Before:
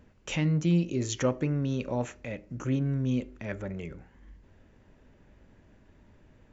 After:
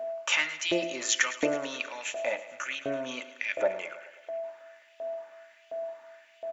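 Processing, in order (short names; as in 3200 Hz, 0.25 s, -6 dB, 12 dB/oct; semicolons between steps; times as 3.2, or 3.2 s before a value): comb 3.4 ms, depth 35%; de-hum 56.94 Hz, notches 13; whine 660 Hz -46 dBFS; LFO high-pass saw up 1.4 Hz 510–3100 Hz; on a send: thinning echo 0.107 s, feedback 67%, high-pass 210 Hz, level -15 dB; on the sum: gain +7.5 dB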